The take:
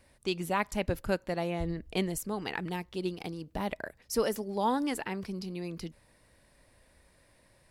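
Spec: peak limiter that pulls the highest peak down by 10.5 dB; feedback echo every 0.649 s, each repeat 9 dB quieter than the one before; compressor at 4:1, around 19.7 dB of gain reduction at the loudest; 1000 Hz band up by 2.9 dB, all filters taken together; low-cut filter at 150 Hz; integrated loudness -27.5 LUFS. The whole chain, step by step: HPF 150 Hz; bell 1000 Hz +3.5 dB; compressor 4:1, threshold -47 dBFS; limiter -40.5 dBFS; feedback echo 0.649 s, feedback 35%, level -9 dB; gain +23.5 dB

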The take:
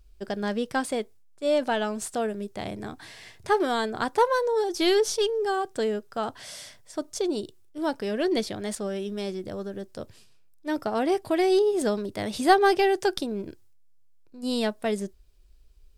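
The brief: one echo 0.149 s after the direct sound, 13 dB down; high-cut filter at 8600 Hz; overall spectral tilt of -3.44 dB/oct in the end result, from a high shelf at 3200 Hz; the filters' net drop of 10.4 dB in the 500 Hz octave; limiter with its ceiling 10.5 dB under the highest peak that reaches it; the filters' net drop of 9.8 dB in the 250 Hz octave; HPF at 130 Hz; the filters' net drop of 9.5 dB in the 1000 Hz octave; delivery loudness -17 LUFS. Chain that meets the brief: HPF 130 Hz; LPF 8600 Hz; bell 250 Hz -9 dB; bell 500 Hz -8.5 dB; bell 1000 Hz -8 dB; high shelf 3200 Hz -7 dB; limiter -26 dBFS; echo 0.149 s -13 dB; gain +20.5 dB

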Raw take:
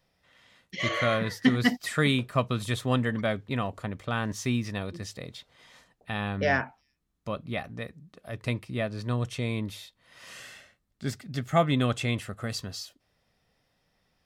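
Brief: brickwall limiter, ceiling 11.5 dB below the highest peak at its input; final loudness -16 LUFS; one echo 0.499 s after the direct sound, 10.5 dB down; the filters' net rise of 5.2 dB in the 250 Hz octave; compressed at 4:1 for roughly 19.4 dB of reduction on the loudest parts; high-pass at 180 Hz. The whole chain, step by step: HPF 180 Hz; bell 250 Hz +7 dB; compressor 4:1, threshold -36 dBFS; limiter -31 dBFS; echo 0.499 s -10.5 dB; gain +27 dB

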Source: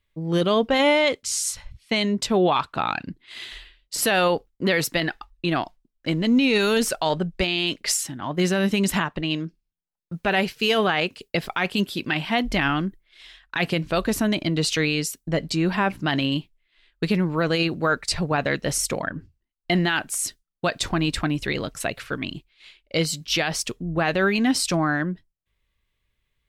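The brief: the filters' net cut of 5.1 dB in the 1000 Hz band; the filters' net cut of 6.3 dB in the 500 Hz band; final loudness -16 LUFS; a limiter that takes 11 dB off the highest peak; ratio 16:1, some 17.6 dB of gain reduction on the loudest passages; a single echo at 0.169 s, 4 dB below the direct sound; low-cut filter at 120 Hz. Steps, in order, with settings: HPF 120 Hz; bell 500 Hz -7 dB; bell 1000 Hz -4.5 dB; compressor 16:1, threshold -35 dBFS; limiter -29.5 dBFS; echo 0.169 s -4 dB; gain +23 dB

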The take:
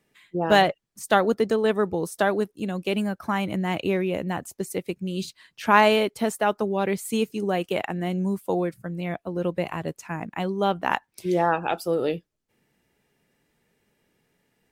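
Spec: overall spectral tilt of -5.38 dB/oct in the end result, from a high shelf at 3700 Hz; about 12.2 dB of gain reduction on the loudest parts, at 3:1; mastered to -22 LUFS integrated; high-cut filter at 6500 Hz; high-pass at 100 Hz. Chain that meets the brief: HPF 100 Hz; LPF 6500 Hz; high shelf 3700 Hz -8 dB; compressor 3:1, threshold -30 dBFS; gain +11.5 dB

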